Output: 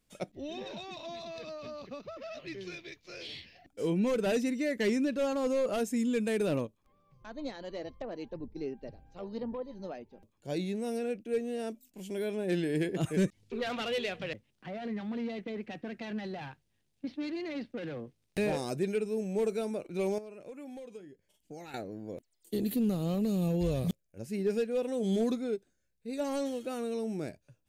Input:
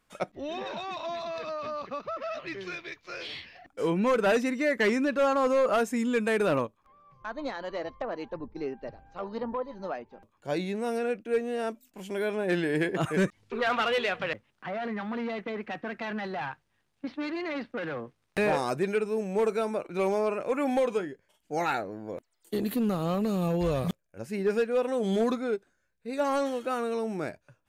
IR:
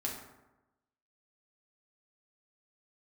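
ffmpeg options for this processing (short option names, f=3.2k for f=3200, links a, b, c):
-filter_complex "[0:a]equalizer=f=1.2k:t=o:w=1.8:g=-14.5,asettb=1/sr,asplit=3[a][b][c];[a]atrim=end=20.184[d];[b]atrim=start=20.18:end=21.74,asetpts=PTS-STARTPTS,afade=t=in:d=0.004:c=qsin,afade=t=out:st=1.556:d=0.004:c=qsin,acompressor=threshold=-44dB:ratio=6[e];[c]atrim=start=21.736[f];[d][e]acrossfade=d=0.004:c1=hsin:c2=qsin[g];[g][f]acrossfade=d=0.004:c1=qsin:c2=hsin"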